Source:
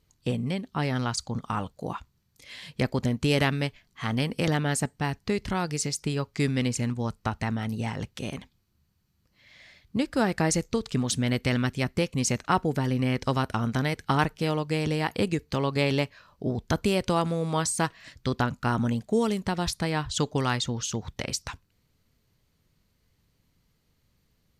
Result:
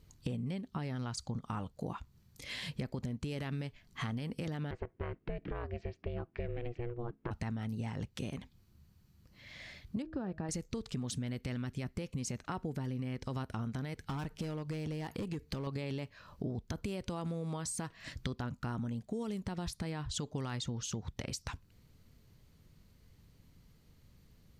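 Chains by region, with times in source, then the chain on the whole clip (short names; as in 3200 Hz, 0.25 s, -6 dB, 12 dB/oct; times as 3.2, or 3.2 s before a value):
4.71–7.31 LPF 2600 Hz 24 dB/oct + ring modulator 240 Hz
10.02–10.49 tape spacing loss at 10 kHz 37 dB + notch 2100 Hz, Q 5.7 + de-hum 158.5 Hz, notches 4
13.96–15.67 overloaded stage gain 22.5 dB + compressor 2.5:1, threshold -34 dBFS
whole clip: low shelf 370 Hz +6.5 dB; limiter -16 dBFS; compressor 5:1, threshold -39 dBFS; gain +2 dB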